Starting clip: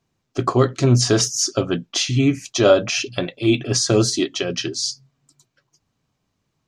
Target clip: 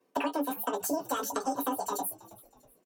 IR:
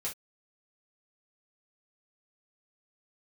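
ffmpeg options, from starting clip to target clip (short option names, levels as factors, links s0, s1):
-filter_complex "[1:a]atrim=start_sample=2205[s0];[0:a][s0]afir=irnorm=-1:irlink=0,acrossover=split=260|1200|2700[s1][s2][s3][s4];[s2]alimiter=limit=0.188:level=0:latency=1[s5];[s1][s5][s3][s4]amix=inputs=4:normalize=0,asetrate=103194,aresample=44100,highpass=170,equalizer=f=420:w=0.36:g=9,acompressor=threshold=0.0794:ratio=10,asplit=4[s6][s7][s8][s9];[s7]adelay=322,afreqshift=-80,volume=0.0944[s10];[s8]adelay=644,afreqshift=-160,volume=0.0376[s11];[s9]adelay=966,afreqshift=-240,volume=0.0151[s12];[s6][s10][s11][s12]amix=inputs=4:normalize=0,volume=0.501"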